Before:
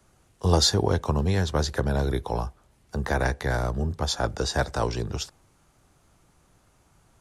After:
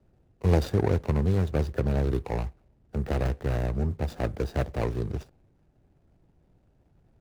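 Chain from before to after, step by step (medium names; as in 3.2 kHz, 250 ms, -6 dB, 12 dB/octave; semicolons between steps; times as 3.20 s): median filter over 41 samples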